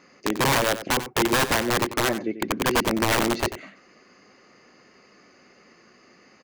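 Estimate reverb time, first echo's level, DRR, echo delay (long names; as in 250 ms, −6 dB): no reverb audible, −12.5 dB, no reverb audible, 92 ms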